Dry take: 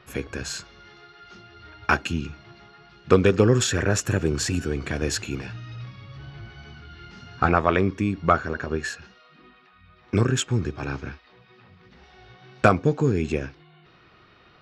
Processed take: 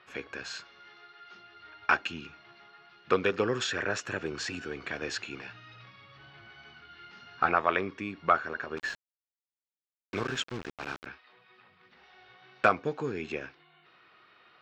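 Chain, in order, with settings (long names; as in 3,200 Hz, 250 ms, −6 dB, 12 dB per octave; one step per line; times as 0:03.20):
high-pass filter 1,100 Hz 6 dB per octave
0:08.77–0:11.06: bit-depth reduction 6 bits, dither none
high-frequency loss of the air 170 metres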